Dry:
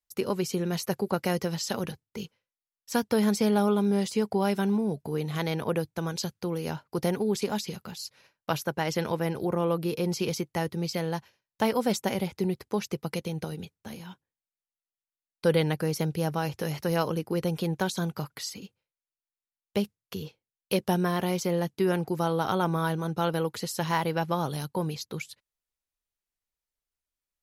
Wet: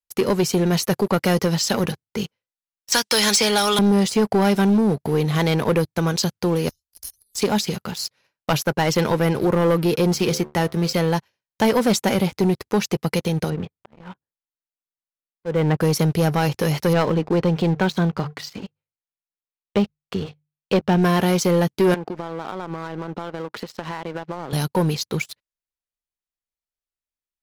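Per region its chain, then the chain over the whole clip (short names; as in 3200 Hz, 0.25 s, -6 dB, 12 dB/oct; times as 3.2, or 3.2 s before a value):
2.92–3.79 weighting filter ITU-R 468 + three-band squash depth 100%
6.69–7.38 inverse Chebyshev band-stop 170–2000 Hz, stop band 60 dB + comb 1.7 ms, depth 61%
10.12–10.93 G.711 law mismatch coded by A + de-hum 73.82 Hz, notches 10
13.5–15.81 LPF 1800 Hz + auto swell 0.3 s
16.93–21.03 air absorption 180 m + notches 50/100/150 Hz
21.94–24.53 BPF 190–2900 Hz + compressor 10:1, threshold -36 dBFS
whole clip: high shelf 11000 Hz -4 dB; sample leveller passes 3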